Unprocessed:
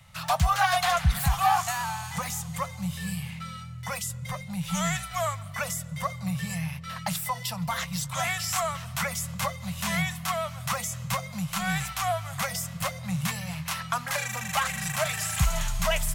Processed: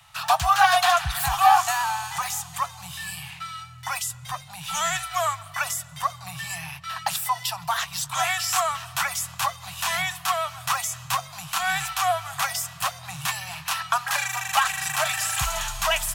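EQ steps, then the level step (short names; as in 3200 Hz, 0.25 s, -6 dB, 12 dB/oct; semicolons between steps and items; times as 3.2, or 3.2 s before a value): Chebyshev band-stop 140–730 Hz, order 3; tone controls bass -14 dB, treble -3 dB; notch 2100 Hz, Q 7.8; +7.0 dB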